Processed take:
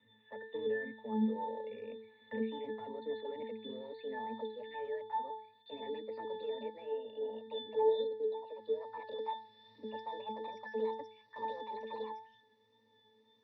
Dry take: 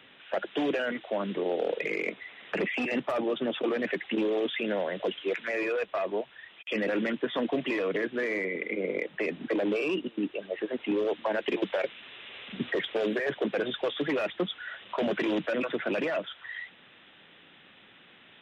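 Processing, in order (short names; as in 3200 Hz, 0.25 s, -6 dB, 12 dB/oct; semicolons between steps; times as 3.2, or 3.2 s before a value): speed glide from 104% -> 170%; octave resonator A, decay 0.48 s; wow and flutter 17 cents; gain +8.5 dB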